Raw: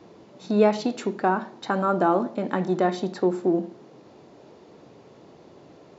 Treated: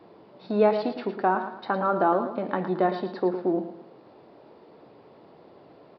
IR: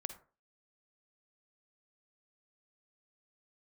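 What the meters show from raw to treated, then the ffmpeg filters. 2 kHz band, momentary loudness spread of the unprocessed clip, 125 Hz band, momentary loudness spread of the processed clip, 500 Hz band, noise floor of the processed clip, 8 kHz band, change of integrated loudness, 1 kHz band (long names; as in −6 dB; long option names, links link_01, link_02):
−1.5 dB, 7 LU, −4.5 dB, 8 LU, −1.0 dB, −53 dBFS, can't be measured, −1.5 dB, 0.0 dB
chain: -af "equalizer=frequency=820:width=0.49:gain=6.5,aecho=1:1:111|222|333|444:0.316|0.114|0.041|0.0148,aresample=11025,aresample=44100,volume=-6.5dB"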